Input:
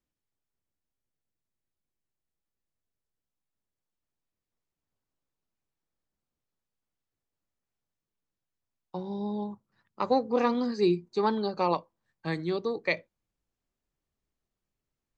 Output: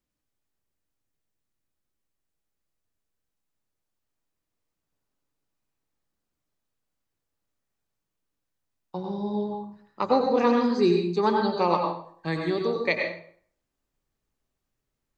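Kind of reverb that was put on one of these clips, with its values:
dense smooth reverb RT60 0.56 s, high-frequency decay 0.75×, pre-delay 80 ms, DRR 1.5 dB
level +2.5 dB

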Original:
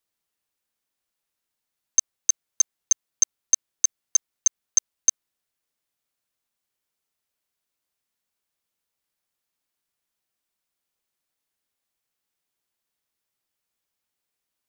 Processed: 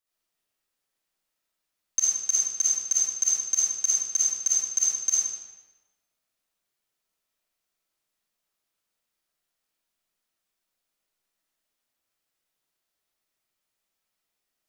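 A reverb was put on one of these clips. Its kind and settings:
comb and all-pass reverb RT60 1.2 s, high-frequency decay 0.85×, pre-delay 15 ms, DRR −8 dB
level −6.5 dB

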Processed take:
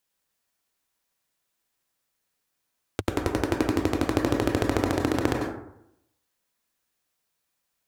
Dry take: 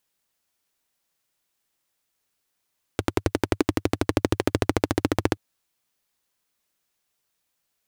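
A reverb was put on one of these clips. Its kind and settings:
dense smooth reverb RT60 0.78 s, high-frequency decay 0.4×, pre-delay 85 ms, DRR 1 dB
level −3 dB

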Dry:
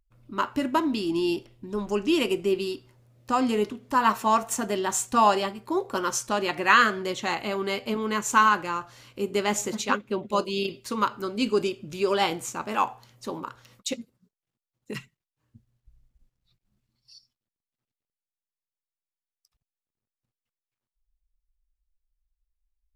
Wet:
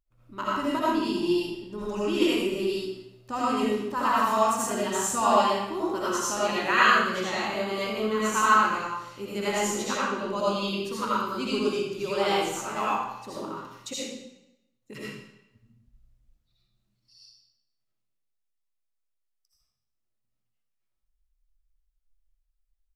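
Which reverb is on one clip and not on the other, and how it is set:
comb and all-pass reverb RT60 0.85 s, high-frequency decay 0.95×, pre-delay 40 ms, DRR −8 dB
level −8.5 dB

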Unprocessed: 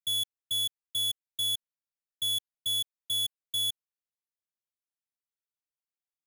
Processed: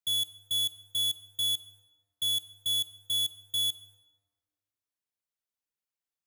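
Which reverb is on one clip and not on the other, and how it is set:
dense smooth reverb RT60 1.5 s, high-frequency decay 0.55×, DRR 14 dB

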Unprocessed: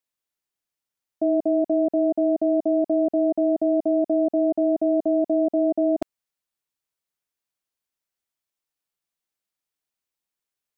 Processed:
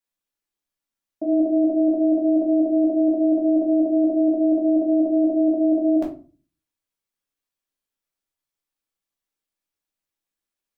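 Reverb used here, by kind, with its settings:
rectangular room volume 200 cubic metres, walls furnished, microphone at 2.4 metres
level −5 dB

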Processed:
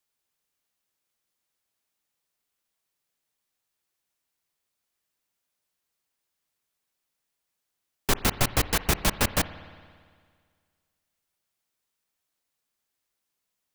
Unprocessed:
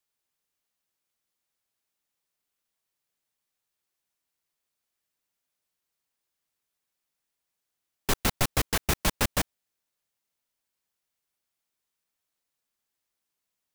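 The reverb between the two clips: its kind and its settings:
spring reverb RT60 1.9 s, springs 56 ms, chirp 35 ms, DRR 14 dB
level +2 dB

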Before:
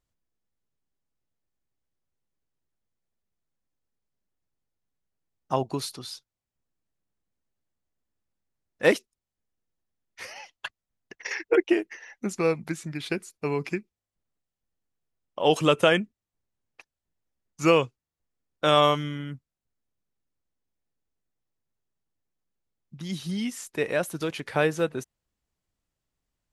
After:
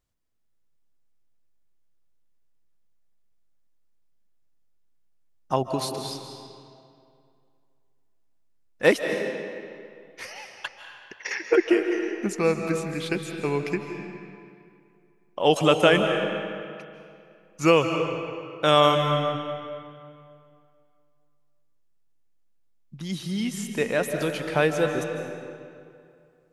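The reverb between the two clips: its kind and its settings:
comb and all-pass reverb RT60 2.4 s, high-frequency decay 0.75×, pre-delay 115 ms, DRR 5 dB
level +1.5 dB

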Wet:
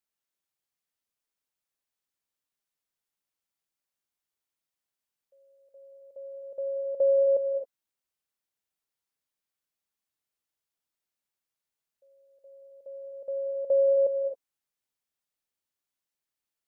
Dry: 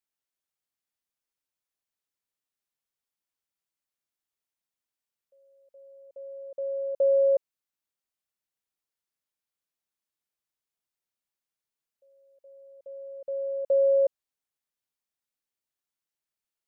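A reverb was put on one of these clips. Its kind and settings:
reverb whose tail is shaped and stops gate 290 ms rising, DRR 7.5 dB

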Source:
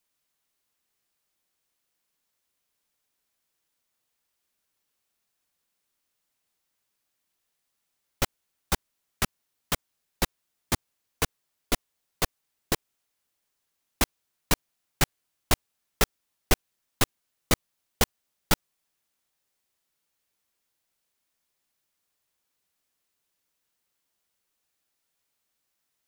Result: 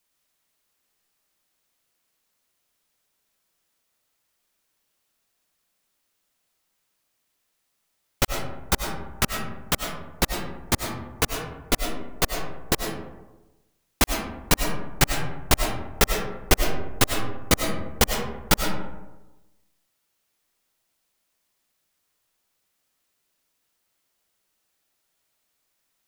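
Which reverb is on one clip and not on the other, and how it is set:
comb and all-pass reverb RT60 1.1 s, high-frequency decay 0.4×, pre-delay 60 ms, DRR 3.5 dB
level +4 dB

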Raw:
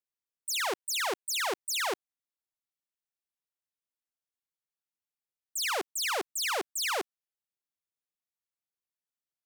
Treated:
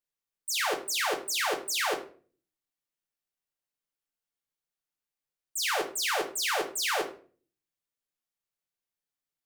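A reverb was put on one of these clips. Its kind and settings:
rectangular room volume 32 cubic metres, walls mixed, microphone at 0.42 metres

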